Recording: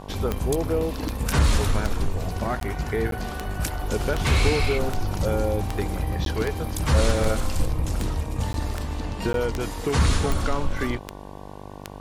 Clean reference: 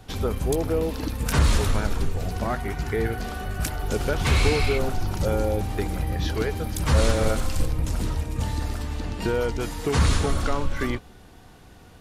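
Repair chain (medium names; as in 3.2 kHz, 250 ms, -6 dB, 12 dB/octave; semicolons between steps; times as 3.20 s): de-click; de-hum 49.5 Hz, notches 23; interpolate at 2.60/3.11/6.25/8.53/9.33 s, 12 ms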